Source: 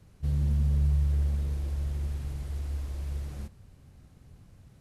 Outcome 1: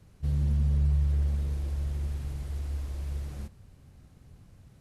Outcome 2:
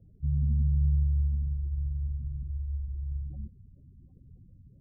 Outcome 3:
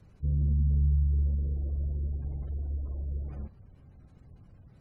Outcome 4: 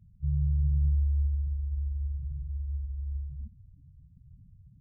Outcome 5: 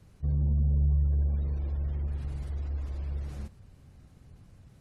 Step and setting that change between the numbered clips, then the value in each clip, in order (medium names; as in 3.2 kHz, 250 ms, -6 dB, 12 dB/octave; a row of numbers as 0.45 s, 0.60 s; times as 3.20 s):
spectral gate, under each frame's peak: -60 dB, -20 dB, -35 dB, -10 dB, -45 dB